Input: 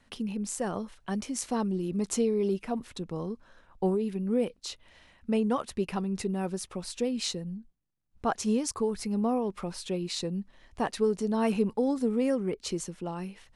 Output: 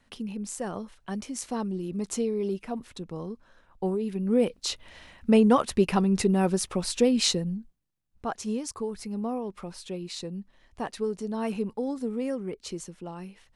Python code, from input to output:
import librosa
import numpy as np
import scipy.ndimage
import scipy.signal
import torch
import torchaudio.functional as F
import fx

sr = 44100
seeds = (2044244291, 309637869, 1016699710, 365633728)

y = fx.gain(x, sr, db=fx.line((3.89, -1.5), (4.68, 8.0), (7.36, 8.0), (8.27, -3.5)))